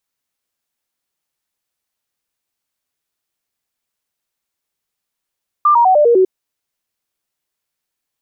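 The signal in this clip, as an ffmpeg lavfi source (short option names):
-f lavfi -i "aevalsrc='0.447*clip(min(mod(t,0.1),0.1-mod(t,0.1))/0.005,0,1)*sin(2*PI*1190*pow(2,-floor(t/0.1)/3)*mod(t,0.1))':d=0.6:s=44100"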